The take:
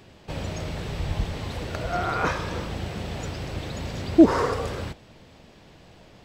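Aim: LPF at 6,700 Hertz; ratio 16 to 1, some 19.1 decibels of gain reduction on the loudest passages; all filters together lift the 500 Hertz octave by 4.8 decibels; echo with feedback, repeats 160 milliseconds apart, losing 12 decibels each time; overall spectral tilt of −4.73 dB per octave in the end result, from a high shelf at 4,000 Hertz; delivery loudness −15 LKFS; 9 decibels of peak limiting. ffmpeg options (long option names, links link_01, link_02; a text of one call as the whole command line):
ffmpeg -i in.wav -af "lowpass=6700,equalizer=frequency=500:width_type=o:gain=6.5,highshelf=frequency=4000:gain=6,acompressor=threshold=-24dB:ratio=16,alimiter=limit=-23dB:level=0:latency=1,aecho=1:1:160|320|480:0.251|0.0628|0.0157,volume=17.5dB" out.wav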